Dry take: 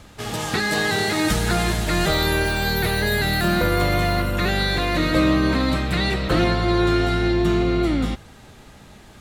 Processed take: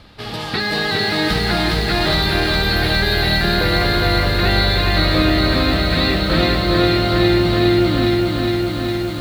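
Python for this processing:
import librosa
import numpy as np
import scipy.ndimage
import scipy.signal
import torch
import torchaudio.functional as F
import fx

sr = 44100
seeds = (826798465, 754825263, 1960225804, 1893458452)

y = fx.high_shelf_res(x, sr, hz=5500.0, db=-7.0, q=3.0)
y = fx.echo_crushed(y, sr, ms=410, feedback_pct=80, bits=7, wet_db=-3.5)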